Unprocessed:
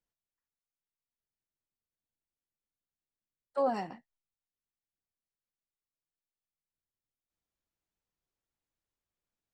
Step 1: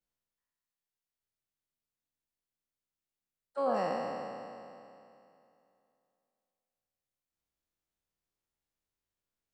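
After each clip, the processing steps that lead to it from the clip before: spectral sustain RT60 2.66 s; trim -4 dB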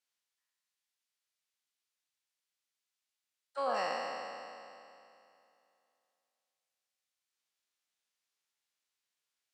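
band-pass filter 4 kHz, Q 0.52; trim +7.5 dB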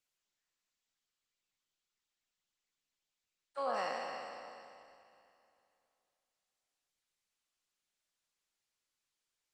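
trim -2 dB; Opus 20 kbps 48 kHz

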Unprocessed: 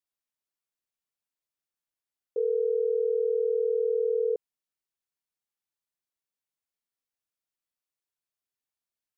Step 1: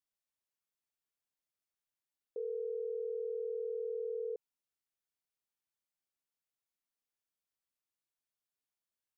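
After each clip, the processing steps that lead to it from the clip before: peak limiter -29.5 dBFS, peak gain reduction 9.5 dB; trim -3.5 dB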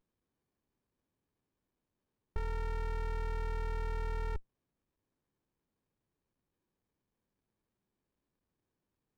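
sliding maximum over 65 samples; trim +9 dB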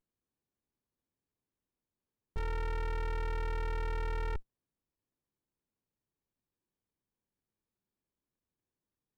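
waveshaping leveller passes 2; trim -3 dB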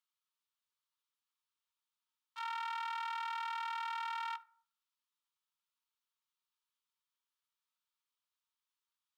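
rippled Chebyshev high-pass 890 Hz, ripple 9 dB; reverberation RT60 0.55 s, pre-delay 3 ms, DRR 11 dB; trim +7 dB

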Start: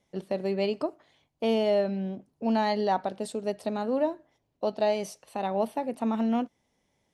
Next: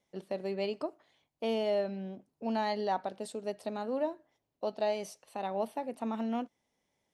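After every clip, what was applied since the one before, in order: bass shelf 190 Hz -7 dB; trim -5 dB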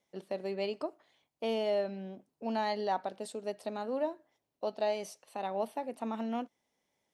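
bass shelf 140 Hz -8 dB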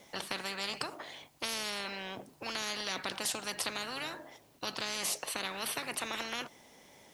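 spectrum-flattening compressor 10:1; trim +2 dB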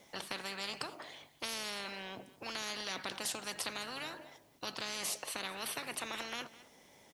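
delay 209 ms -18 dB; trim -3.5 dB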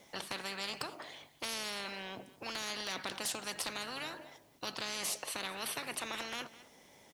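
one-sided wavefolder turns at -28.5 dBFS; trim +1 dB

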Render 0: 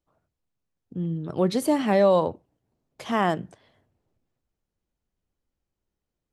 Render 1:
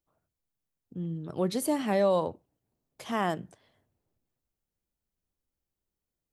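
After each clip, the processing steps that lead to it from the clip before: treble shelf 8.4 kHz +11 dB; trim -6 dB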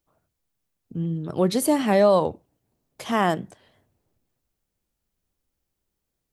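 warped record 45 rpm, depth 100 cents; trim +7.5 dB

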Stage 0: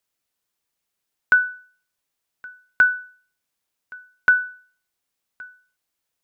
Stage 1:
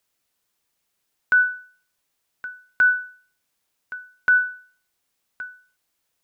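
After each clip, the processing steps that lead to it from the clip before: peak limiter -16.5 dBFS, peak gain reduction 10 dB; trim +5 dB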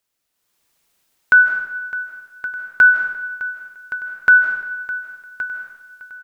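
level rider gain up to 11 dB; feedback delay 609 ms, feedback 48%, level -16 dB; on a send at -5.5 dB: reverberation RT60 0.95 s, pre-delay 120 ms; on the sum: trim -2.5 dB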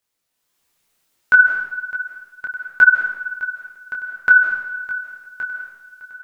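detune thickener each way 21 cents; trim +3 dB

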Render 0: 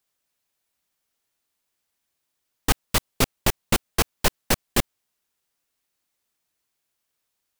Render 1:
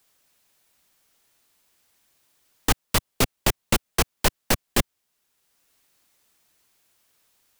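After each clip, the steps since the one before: three bands compressed up and down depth 40%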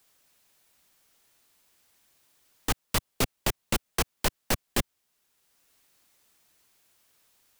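peak limiter -13.5 dBFS, peak gain reduction 7.5 dB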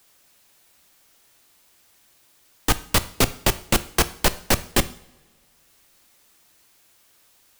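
two-slope reverb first 0.54 s, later 2.4 s, from -22 dB, DRR 12.5 dB; trim +7.5 dB

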